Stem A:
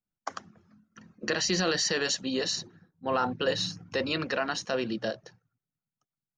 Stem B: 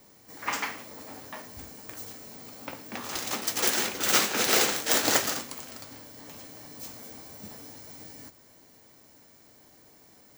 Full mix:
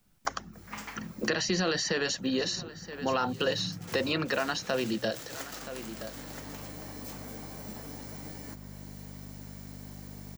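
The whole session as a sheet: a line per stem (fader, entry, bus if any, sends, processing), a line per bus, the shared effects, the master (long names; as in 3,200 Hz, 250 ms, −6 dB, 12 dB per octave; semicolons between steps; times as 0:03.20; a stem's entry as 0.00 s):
+0.5 dB, 0.00 s, no send, echo send −23.5 dB, no processing
−14.0 dB, 0.25 s, no send, echo send −23.5 dB, mains hum 50 Hz, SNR 13 dB; automatic ducking −10 dB, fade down 0.95 s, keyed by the first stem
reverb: not used
echo: single-tap delay 974 ms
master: low-shelf EQ 120 Hz +5.5 dB; multiband upward and downward compressor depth 70%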